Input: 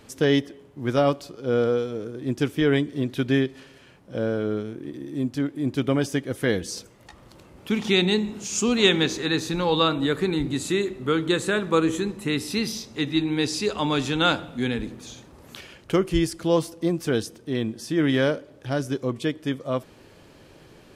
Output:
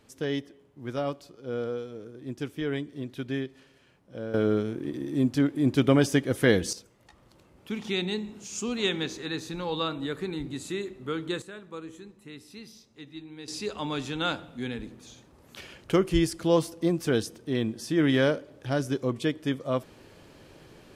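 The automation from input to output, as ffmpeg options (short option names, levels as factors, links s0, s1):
-af "asetnsamples=n=441:p=0,asendcmd='4.34 volume volume 2dB;6.73 volume volume -9dB;11.42 volume volume -19.5dB;13.48 volume volume -8dB;15.57 volume volume -1.5dB',volume=0.316"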